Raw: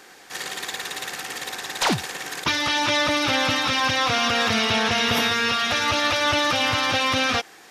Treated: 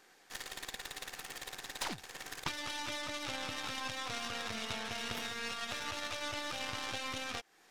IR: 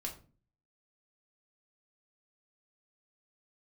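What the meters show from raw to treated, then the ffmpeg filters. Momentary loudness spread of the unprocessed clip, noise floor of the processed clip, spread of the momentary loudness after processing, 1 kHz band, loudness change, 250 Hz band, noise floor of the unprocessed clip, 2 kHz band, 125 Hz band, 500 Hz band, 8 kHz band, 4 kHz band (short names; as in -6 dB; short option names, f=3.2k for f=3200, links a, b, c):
10 LU, -64 dBFS, 6 LU, -19.0 dB, -18.0 dB, -19.5 dB, -48 dBFS, -18.5 dB, -18.5 dB, -19.0 dB, -14.5 dB, -18.0 dB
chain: -af "acompressor=threshold=-32dB:ratio=3,aeval=exprs='0.15*(cos(1*acos(clip(val(0)/0.15,-1,1)))-cos(1*PI/2))+0.0531*(cos(2*acos(clip(val(0)/0.15,-1,1)))-cos(2*PI/2))+0.0133*(cos(3*acos(clip(val(0)/0.15,-1,1)))-cos(3*PI/2))+0.00119*(cos(6*acos(clip(val(0)/0.15,-1,1)))-cos(6*PI/2))+0.0106*(cos(7*acos(clip(val(0)/0.15,-1,1)))-cos(7*PI/2))':c=same,volume=-4dB"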